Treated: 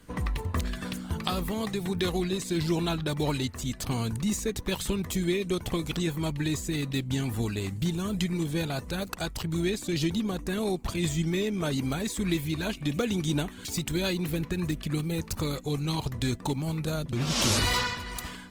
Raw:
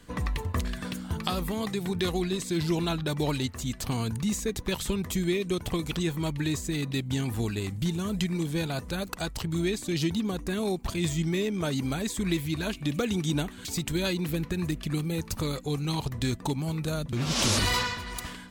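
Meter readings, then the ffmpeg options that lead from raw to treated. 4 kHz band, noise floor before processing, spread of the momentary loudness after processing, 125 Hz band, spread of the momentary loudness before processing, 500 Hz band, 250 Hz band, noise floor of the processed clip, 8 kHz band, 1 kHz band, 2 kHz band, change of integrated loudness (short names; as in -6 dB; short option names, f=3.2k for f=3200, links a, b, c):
0.0 dB, -43 dBFS, 4 LU, 0.0 dB, 4 LU, 0.0 dB, 0.0 dB, -44 dBFS, 0.0 dB, 0.0 dB, 0.0 dB, 0.0 dB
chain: -ar 48000 -c:a libopus -b:a 24k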